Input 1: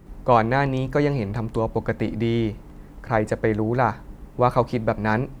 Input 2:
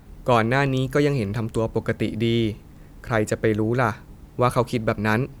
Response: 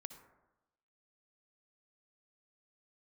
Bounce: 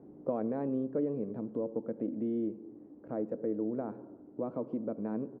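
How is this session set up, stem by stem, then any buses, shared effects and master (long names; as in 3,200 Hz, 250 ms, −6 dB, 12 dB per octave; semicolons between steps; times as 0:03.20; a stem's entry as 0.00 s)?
−11.0 dB, 0.00 s, no send, low-pass with resonance 330 Hz, resonance Q 3.5
−0.5 dB, 0.8 ms, polarity flipped, send −7 dB, brickwall limiter −12 dBFS, peak gain reduction 7 dB; automatic ducking −6 dB, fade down 1.70 s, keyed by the first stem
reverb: on, RT60 1.0 s, pre-delay 52 ms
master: flat-topped band-pass 350 Hz, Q 0.93; downward compressor 1.5 to 1, threshold −38 dBFS, peak gain reduction 6.5 dB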